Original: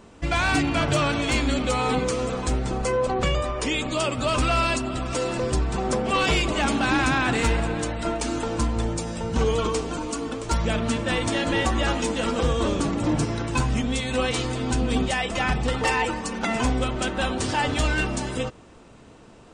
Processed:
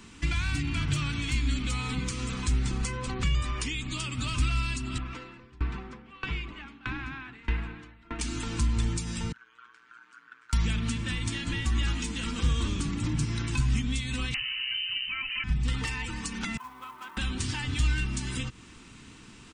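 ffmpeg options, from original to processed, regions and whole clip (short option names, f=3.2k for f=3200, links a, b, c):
-filter_complex "[0:a]asettb=1/sr,asplit=3[a][b][c];[a]atrim=end=4.984[d];[b]atrim=start=4.98:end=8.19,asetpts=PTS-STARTPTS,afade=t=in:d=0.004:c=qsin,afade=t=out:st=3.206:d=0.004:c=qsin,lowpass=2k,equalizer=f=150:w=0.53:g=-4,aeval=exprs='val(0)*pow(10,-28*if(lt(mod(1.6*n/s,1),2*abs(1.6)/1000),1-mod(1.6*n/s,1)/(2*abs(1.6)/1000),(mod(1.6*n/s,1)-2*abs(1.6)/1000)/(1-2*abs(1.6)/1000))/20)':c=same[e];[c]atrim=start=8.186[f];[d][e]acrossfade=d=0.004:c1=hsin:c2=qsin[g];[g][f]acrossfade=d=0.004:c1=qsin:c2=hsin,asettb=1/sr,asplit=3[h][i][j];[h]atrim=end=9.324[k];[i]atrim=start=9.32:end=10.53,asetpts=PTS-STARTPTS,afade=t=in:d=0.004:c=qsin,afade=t=out:st=1.206:d=0.004:c=qsin,acompressor=threshold=-26dB:ratio=10:attack=3.2:release=140:knee=1:detection=peak,bandpass=f=1.5k:t=q:w=11,tremolo=f=120:d=0.824[l];[j]atrim=start=10.526[m];[k][l]acrossfade=d=0.004:c1=hsin:c2=qsin[n];[n][m]acrossfade=d=0.004:c1=qsin:c2=hsin,asettb=1/sr,asplit=3[o][p][q];[o]atrim=end=14.344[r];[p]atrim=start=14.34:end=15.44,asetpts=PTS-STARTPTS,afade=t=in:d=0.004:c=qsin,afade=t=out:st=1.096:d=0.004:c=qsin,lowpass=f=2.6k:t=q:w=0.5098,lowpass=f=2.6k:t=q:w=0.6013,lowpass=f=2.6k:t=q:w=0.9,lowpass=f=2.6k:t=q:w=2.563,afreqshift=-3100,equalizer=f=1.9k:t=o:w=2.5:g=11.5[s];[q]atrim=start=15.436[t];[r][s]acrossfade=d=0.004:c1=hsin:c2=qsin[u];[u][t]acrossfade=d=0.004:c1=qsin:c2=hsin,asettb=1/sr,asplit=3[v][w][x];[v]atrim=end=16.574[y];[w]atrim=start=16.57:end=17.17,asetpts=PTS-STARTPTS,afade=t=in:d=0.004:c=qsin,afade=t=out:st=0.596:d=0.004:c=qsin,bandpass=f=1k:t=q:w=5.7,acrusher=bits=7:mode=log:mix=0:aa=0.000001[z];[x]atrim=start=17.166[aa];[y][z]acrossfade=d=0.004:c1=hsin:c2=qsin[ab];[ab][aa]acrossfade=d=0.004:c1=qsin:c2=hsin,firequalizer=gain_entry='entry(270,0);entry(590,-18);entry(970,-3);entry(2200,6)':delay=0.05:min_phase=1,acrossover=split=160[ac][ad];[ad]acompressor=threshold=-34dB:ratio=5[ae];[ac][ae]amix=inputs=2:normalize=0"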